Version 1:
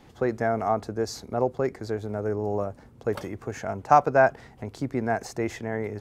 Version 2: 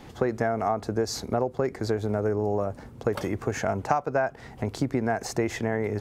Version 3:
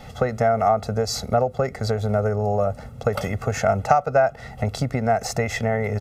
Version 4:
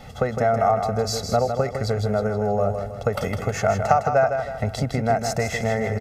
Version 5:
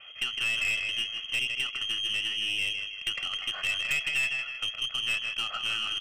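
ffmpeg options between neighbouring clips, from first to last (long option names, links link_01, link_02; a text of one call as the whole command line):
ffmpeg -i in.wav -af "acompressor=threshold=-28dB:ratio=12,volume=7dB" out.wav
ffmpeg -i in.wav -af "aecho=1:1:1.5:0.92,volume=3dB" out.wav
ffmpeg -i in.wav -af "aecho=1:1:158|316|474|632|790:0.447|0.188|0.0788|0.0331|0.0139,volume=-1dB" out.wav
ffmpeg -i in.wav -af "aeval=exprs='if(lt(val(0),0),0.708*val(0),val(0))':channel_layout=same,lowpass=frequency=2800:width_type=q:width=0.5098,lowpass=frequency=2800:width_type=q:width=0.6013,lowpass=frequency=2800:width_type=q:width=0.9,lowpass=frequency=2800:width_type=q:width=2.563,afreqshift=-3300,aeval=exprs='(tanh(7.94*val(0)+0.25)-tanh(0.25))/7.94':channel_layout=same,volume=-5dB" out.wav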